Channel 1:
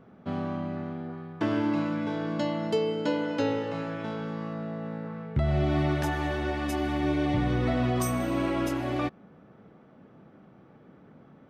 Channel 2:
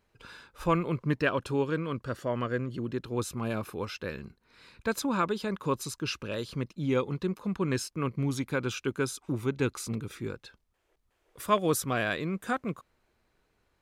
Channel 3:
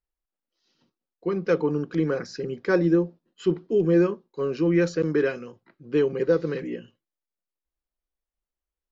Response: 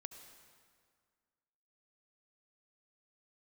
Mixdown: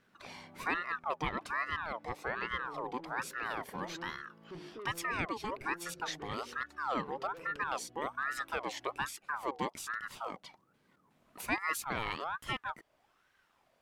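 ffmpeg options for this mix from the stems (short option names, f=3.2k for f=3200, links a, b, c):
-filter_complex "[0:a]acompressor=threshold=-35dB:ratio=2.5,volume=-20dB[a];[1:a]aeval=exprs='val(0)*sin(2*PI*1100*n/s+1100*0.45/1.2*sin(2*PI*1.2*n/s))':c=same,volume=3dB[b];[2:a]lowpass=1.7k,bandreject=f=50.53:t=h:w=4,bandreject=f=101.06:t=h:w=4,bandreject=f=151.59:t=h:w=4,bandreject=f=202.12:t=h:w=4,bandreject=f=252.65:t=h:w=4,bandreject=f=303.18:t=h:w=4,bandreject=f=353.71:t=h:w=4,bandreject=f=404.24:t=h:w=4,bandreject=f=454.77:t=h:w=4,bandreject=f=505.3:t=h:w=4,bandreject=f=555.83:t=h:w=4,bandreject=f=606.36:t=h:w=4,bandreject=f=656.89:t=h:w=4,bandreject=f=707.42:t=h:w=4,bandreject=f=757.95:t=h:w=4,bandreject=f=808.48:t=h:w=4,bandreject=f=859.01:t=h:w=4,bandreject=f=909.54:t=h:w=4,flanger=delay=6.5:depth=9.3:regen=-74:speed=0.6:shape=sinusoidal,adelay=1050,volume=-3dB[c];[a][c]amix=inputs=2:normalize=0,asoftclip=type=tanh:threshold=-34dB,alimiter=level_in=17.5dB:limit=-24dB:level=0:latency=1:release=377,volume=-17.5dB,volume=0dB[d];[b][d]amix=inputs=2:normalize=0,acompressor=threshold=-45dB:ratio=1.5"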